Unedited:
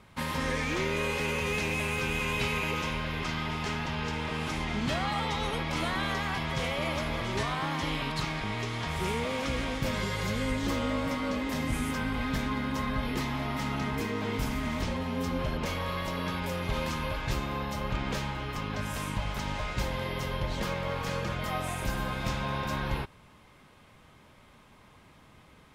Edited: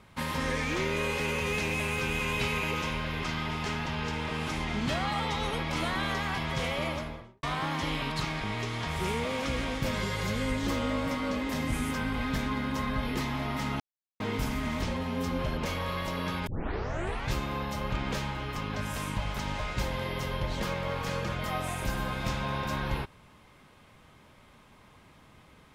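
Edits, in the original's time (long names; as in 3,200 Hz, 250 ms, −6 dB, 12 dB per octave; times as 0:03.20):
0:06.78–0:07.43: fade out and dull
0:13.80–0:14.20: silence
0:16.47: tape start 0.83 s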